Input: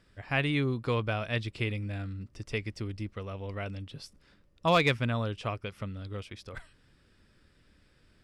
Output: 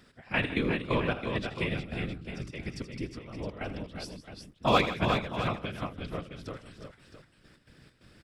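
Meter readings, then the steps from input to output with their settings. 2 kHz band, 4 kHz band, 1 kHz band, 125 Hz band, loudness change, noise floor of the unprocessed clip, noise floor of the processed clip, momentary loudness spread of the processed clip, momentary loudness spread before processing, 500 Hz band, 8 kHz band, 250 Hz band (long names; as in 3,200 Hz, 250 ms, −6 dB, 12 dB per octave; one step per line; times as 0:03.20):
0.0 dB, +0.5 dB, +2.0 dB, −3.0 dB, 0.0 dB, −65 dBFS, −64 dBFS, 16 LU, 17 LU, +0.5 dB, +1.0 dB, +1.5 dB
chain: random phases in short frames
gate pattern "x..x.xx.x" 133 BPM −12 dB
in parallel at +1.5 dB: downward compressor, threshold −49 dBFS, peak gain reduction 27.5 dB
on the sum: low-shelf EQ 74 Hz −6 dB
multi-tap delay 80/157/348/365/665 ms −14/−15/−13.5/−7/−11.5 dB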